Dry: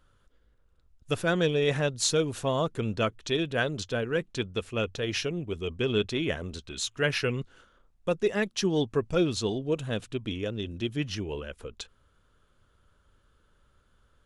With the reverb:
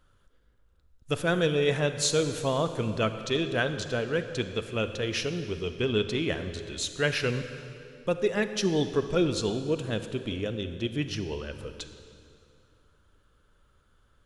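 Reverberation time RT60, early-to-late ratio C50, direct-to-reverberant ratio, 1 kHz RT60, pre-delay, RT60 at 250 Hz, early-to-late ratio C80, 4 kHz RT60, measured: 2.6 s, 9.5 dB, 9.0 dB, 2.5 s, 31 ms, 2.9 s, 10.5 dB, 2.2 s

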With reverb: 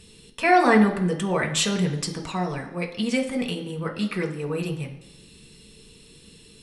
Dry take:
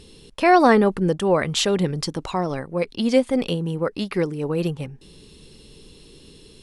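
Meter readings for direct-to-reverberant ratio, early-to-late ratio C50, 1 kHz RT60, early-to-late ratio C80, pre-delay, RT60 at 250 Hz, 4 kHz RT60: 1.0 dB, 10.0 dB, 1.0 s, 12.5 dB, 3 ms, 0.85 s, 0.95 s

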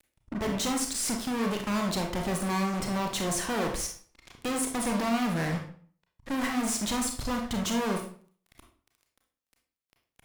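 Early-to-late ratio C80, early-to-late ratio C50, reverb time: 11.5 dB, 6.0 dB, 0.50 s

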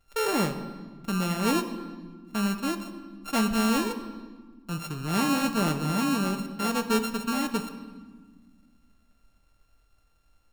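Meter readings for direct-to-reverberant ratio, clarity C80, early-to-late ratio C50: 7.0 dB, 12.0 dB, 10.5 dB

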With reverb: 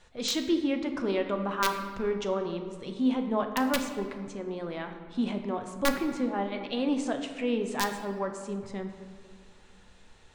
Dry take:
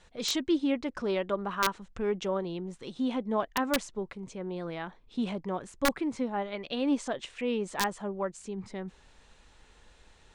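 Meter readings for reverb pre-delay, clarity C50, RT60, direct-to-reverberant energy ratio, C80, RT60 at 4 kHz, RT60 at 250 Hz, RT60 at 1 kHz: 8 ms, 7.5 dB, 2.1 s, 5.0 dB, 9.0 dB, 1.1 s, 2.6 s, 2.0 s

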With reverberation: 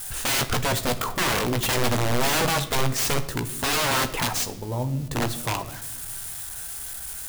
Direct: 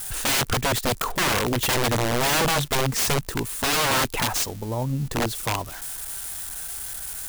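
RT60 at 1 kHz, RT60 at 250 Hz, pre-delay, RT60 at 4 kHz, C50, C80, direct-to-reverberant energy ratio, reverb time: 0.75 s, 2.1 s, 16 ms, 0.70 s, 14.0 dB, 16.0 dB, 8.0 dB, 1.0 s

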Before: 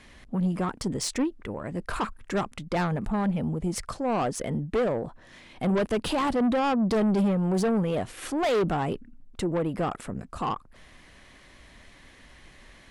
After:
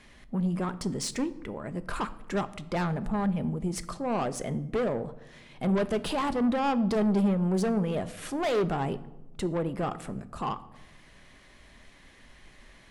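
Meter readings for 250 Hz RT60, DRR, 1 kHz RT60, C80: 1.5 s, 11.5 dB, 0.90 s, 19.0 dB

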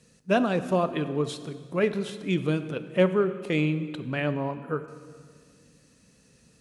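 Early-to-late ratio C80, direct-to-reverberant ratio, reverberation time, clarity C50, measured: 13.5 dB, 11.0 dB, 1.9 s, 12.5 dB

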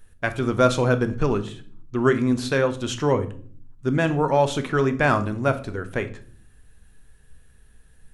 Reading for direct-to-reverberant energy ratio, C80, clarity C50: 8.5 dB, 19.5 dB, 15.0 dB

